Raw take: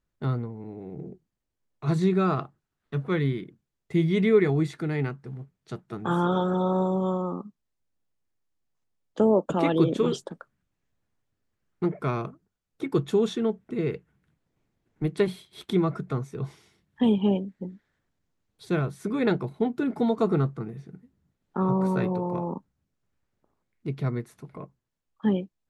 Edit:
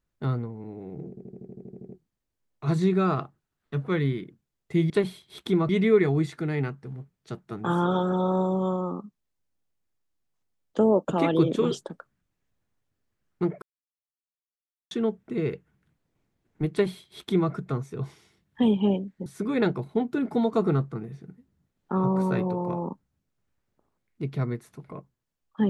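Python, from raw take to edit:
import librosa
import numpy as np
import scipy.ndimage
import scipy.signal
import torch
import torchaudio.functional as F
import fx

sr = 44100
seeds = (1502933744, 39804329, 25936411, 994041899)

y = fx.edit(x, sr, fx.stutter(start_s=1.09, slice_s=0.08, count=11),
    fx.silence(start_s=12.03, length_s=1.29),
    fx.duplicate(start_s=15.13, length_s=0.79, to_s=4.1),
    fx.cut(start_s=17.67, length_s=1.24), tone=tone)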